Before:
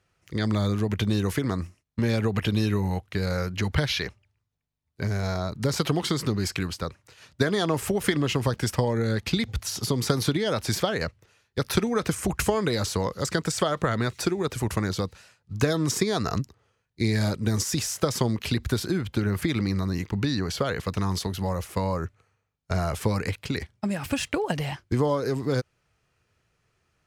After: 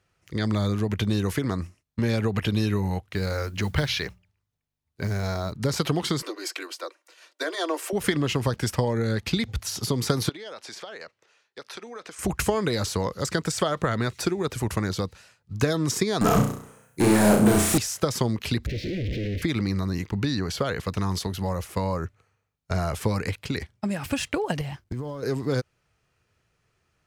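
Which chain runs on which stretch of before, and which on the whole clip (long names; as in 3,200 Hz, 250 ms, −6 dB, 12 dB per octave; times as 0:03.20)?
0:03.11–0:05.52: mains-hum notches 60/120/180 Hz + noise that follows the level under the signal 30 dB
0:06.22–0:07.93: Butterworth high-pass 310 Hz 72 dB per octave + notch comb filter 420 Hz
0:10.29–0:12.19: band-pass filter 440–7,000 Hz + downward compressor 2.5 to 1, threshold −41 dBFS
0:16.21–0:17.78: drawn EQ curve 230 Hz 0 dB, 4,600 Hz −15 dB, 8,700 Hz +14 dB + mid-hump overdrive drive 32 dB, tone 2,100 Hz, clips at −11 dBFS + flutter between parallel walls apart 5.7 metres, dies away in 0.53 s
0:18.67–0:19.42: sign of each sample alone + Chebyshev band-stop filter 530–2,000 Hz, order 3 + high-frequency loss of the air 270 metres
0:24.61–0:25.23: mu-law and A-law mismatch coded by A + downward compressor, threshold −34 dBFS + low-shelf EQ 220 Hz +9.5 dB
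whole clip: no processing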